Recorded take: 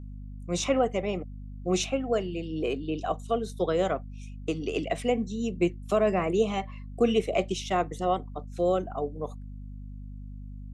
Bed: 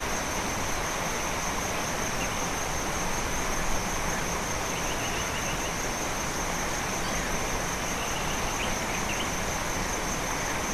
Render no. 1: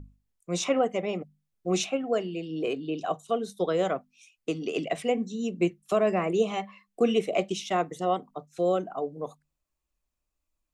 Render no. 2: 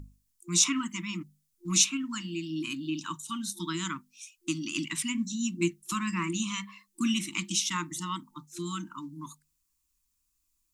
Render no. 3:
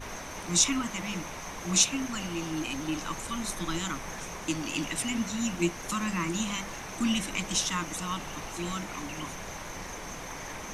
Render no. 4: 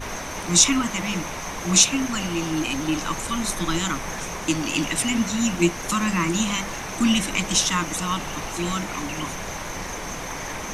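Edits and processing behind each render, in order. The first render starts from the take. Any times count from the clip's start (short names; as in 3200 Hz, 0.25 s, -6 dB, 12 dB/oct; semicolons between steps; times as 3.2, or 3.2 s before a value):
notches 50/100/150/200/250 Hz
FFT band-reject 350–890 Hz; tone controls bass 0 dB, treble +14 dB
add bed -10 dB
gain +8 dB; limiter -2 dBFS, peak gain reduction 1.5 dB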